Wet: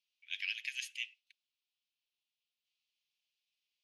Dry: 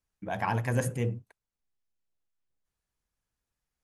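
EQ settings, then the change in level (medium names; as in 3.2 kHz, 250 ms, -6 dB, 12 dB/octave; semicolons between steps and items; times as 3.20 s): steep high-pass 2.6 kHz 48 dB/octave; distance through air 280 m; +16.5 dB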